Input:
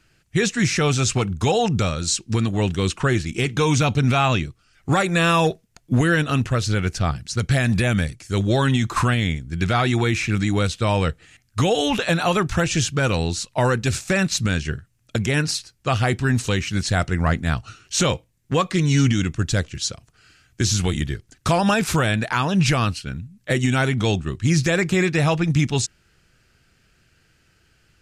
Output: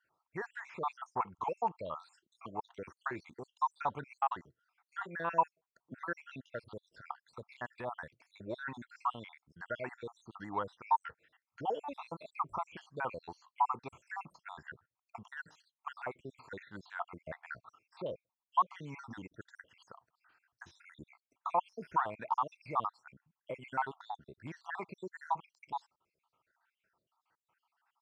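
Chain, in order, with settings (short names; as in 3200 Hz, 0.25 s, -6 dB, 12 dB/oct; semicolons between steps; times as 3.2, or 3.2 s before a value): random spectral dropouts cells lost 68%; de-esser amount 90%; band-pass 960 Hz, Q 5.2; gain +2.5 dB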